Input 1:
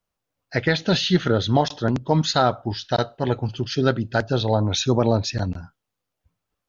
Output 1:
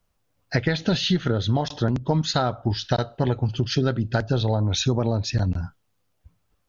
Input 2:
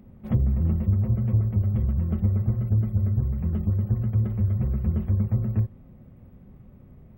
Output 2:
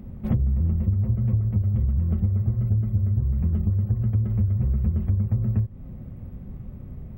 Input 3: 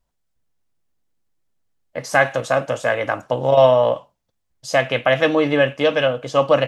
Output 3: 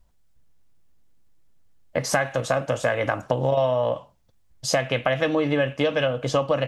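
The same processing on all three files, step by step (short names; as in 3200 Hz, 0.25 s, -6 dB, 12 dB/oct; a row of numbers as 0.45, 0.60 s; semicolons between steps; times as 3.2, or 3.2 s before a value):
low shelf 150 Hz +9 dB; compressor 6:1, threshold -25 dBFS; match loudness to -24 LUFS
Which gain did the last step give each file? +6.0, +5.0, +5.5 dB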